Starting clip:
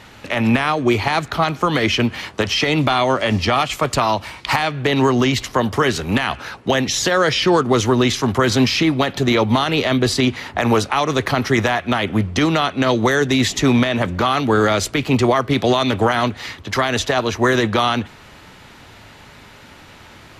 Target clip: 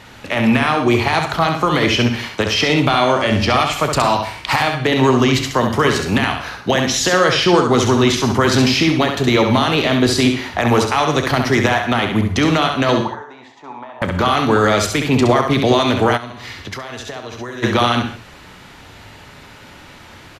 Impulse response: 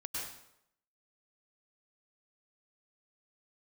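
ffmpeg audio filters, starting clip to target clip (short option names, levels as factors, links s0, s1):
-filter_complex "[0:a]asettb=1/sr,asplit=3[s0][s1][s2];[s0]atrim=end=13.014[s3];[s1]atrim=start=13.01:end=14.02,asetpts=PTS-STARTPTS,afade=t=in:d=0.004:c=qsin,afade=t=out:st=1.006:d=0.004:c=qsin,bandpass=f=900:t=q:w=8:csg=0[s4];[s2]atrim=start=14.016[s5];[s3][s4]acrossfade=d=0.004:c1=hsin:c2=qsin[s6];[s6][s5]acrossfade=d=0.004:c1=qsin:c2=hsin,aecho=1:1:32|67:0.188|0.531,asplit=2[s7][s8];[1:a]atrim=start_sample=2205,atrim=end_sample=6615[s9];[s8][s9]afir=irnorm=-1:irlink=0,volume=0.422[s10];[s7][s10]amix=inputs=2:normalize=0,asplit=3[s11][s12][s13];[s11]afade=t=out:st=16.16:d=0.02[s14];[s12]acompressor=threshold=0.0562:ratio=16,afade=t=in:st=16.16:d=0.02,afade=t=out:st=17.62:d=0.02[s15];[s13]afade=t=in:st=17.62:d=0.02[s16];[s14][s15][s16]amix=inputs=3:normalize=0,volume=0.891"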